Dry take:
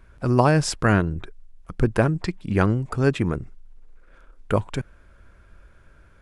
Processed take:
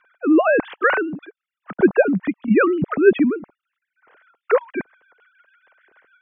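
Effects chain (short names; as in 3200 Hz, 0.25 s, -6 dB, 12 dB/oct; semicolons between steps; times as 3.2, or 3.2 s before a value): sine-wave speech; rotary speaker horn 1 Hz, later 6.7 Hz, at 3.6; gain +5.5 dB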